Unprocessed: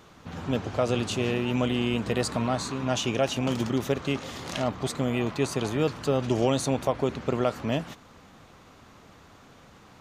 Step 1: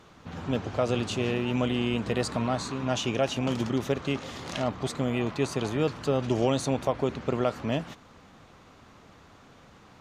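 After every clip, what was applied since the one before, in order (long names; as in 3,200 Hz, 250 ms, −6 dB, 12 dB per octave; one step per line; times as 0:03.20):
high-shelf EQ 11,000 Hz −10 dB
level −1 dB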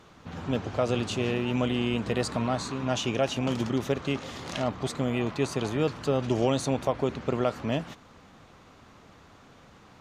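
no processing that can be heard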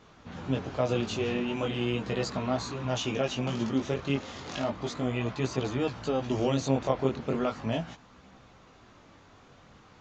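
multi-voice chorus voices 2, 0.36 Hz, delay 19 ms, depth 3.7 ms
level +1 dB
SBC 192 kbit/s 16,000 Hz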